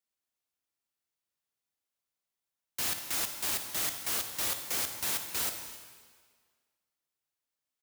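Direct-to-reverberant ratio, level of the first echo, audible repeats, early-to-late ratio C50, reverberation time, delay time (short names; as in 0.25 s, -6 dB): 6.0 dB, -18.5 dB, 1, 6.5 dB, 1.7 s, 0.268 s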